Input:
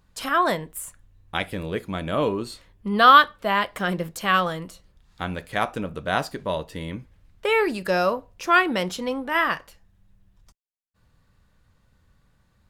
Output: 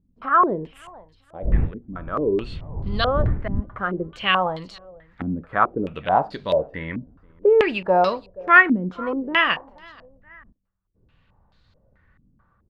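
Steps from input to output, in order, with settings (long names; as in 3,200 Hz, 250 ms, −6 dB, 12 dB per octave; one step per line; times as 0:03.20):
0:01.42–0:03.60: wind on the microphone 83 Hz −20 dBFS
automatic gain control gain up to 6 dB
on a send: repeating echo 478 ms, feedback 39%, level −24 dB
on the sum: low-pass on a step sequencer 4.6 Hz 260–4,200 Hz
level −5.5 dB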